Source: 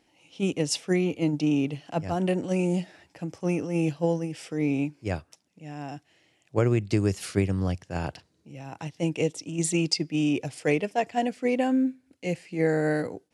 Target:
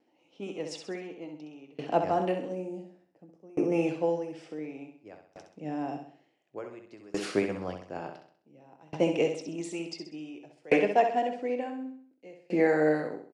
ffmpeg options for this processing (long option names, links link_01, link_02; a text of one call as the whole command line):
ffmpeg -i in.wav -filter_complex "[0:a]asettb=1/sr,asplit=3[link_01][link_02][link_03];[link_01]atrim=end=2.484[link_04];[link_02]atrim=start=2.48:end=3.72,asetpts=PTS-STARTPTS,afade=type=in:duration=0.004:curve=qsin,afade=type=out:start_time=1.236:duration=0.004:curve=qsin,equalizer=frequency=2300:width=0.3:gain=-11[link_05];[link_03]atrim=start=3.716[link_06];[link_04][link_05]acrossfade=duration=0.004:curve1=hsin:curve2=qsin[link_07];[link_07][link_06]acrossfade=duration=0.004:curve1=qsin:curve2=hsin,acrossover=split=720[link_08][link_09];[link_08]acompressor=threshold=-34dB:ratio=4[link_10];[link_10][link_09]amix=inputs=2:normalize=0,highpass=370,lowpass=6100,tiltshelf=frequency=890:gain=9,asplit=2[link_11][link_12];[link_12]adelay=20,volume=-13dB[link_13];[link_11][link_13]amix=inputs=2:normalize=0,aecho=1:1:65|130|195|260|325|390:0.501|0.241|0.115|0.0554|0.0266|0.0128,dynaudnorm=framelen=130:gausssize=9:maxgain=13dB,aeval=exprs='val(0)*pow(10,-28*if(lt(mod(0.56*n/s,1),2*abs(0.56)/1000),1-mod(0.56*n/s,1)/(2*abs(0.56)/1000),(mod(0.56*n/s,1)-2*abs(0.56)/1000)/(1-2*abs(0.56)/1000))/20)':channel_layout=same,volume=-3.5dB" out.wav